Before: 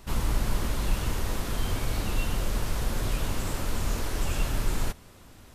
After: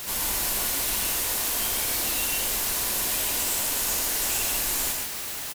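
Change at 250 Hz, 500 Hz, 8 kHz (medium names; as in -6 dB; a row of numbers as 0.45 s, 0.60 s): -5.0 dB, -0.5 dB, +15.0 dB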